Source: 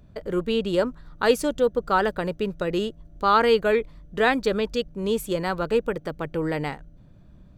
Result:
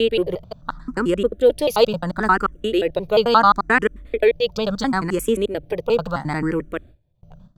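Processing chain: slices in reverse order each 88 ms, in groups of 7; gate with hold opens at -40 dBFS; endless phaser +0.73 Hz; gain +7 dB

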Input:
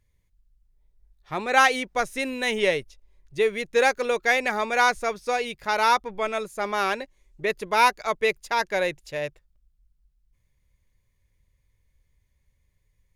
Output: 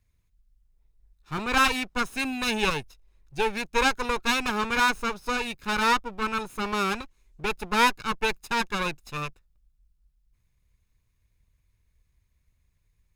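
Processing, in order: minimum comb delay 0.77 ms

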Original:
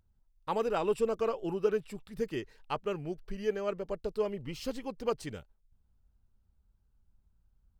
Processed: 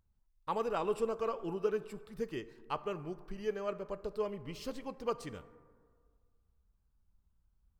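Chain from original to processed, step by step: bell 1100 Hz +5 dB 0.43 oct; plate-style reverb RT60 1.8 s, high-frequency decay 0.35×, DRR 14 dB; gain -4.5 dB

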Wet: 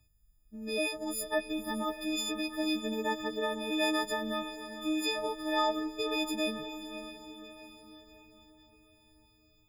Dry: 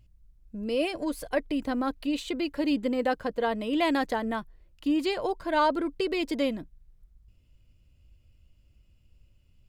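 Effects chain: frequency quantiser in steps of 6 st; diffused feedback echo 0.551 s, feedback 50%, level -11 dB; gain -7 dB

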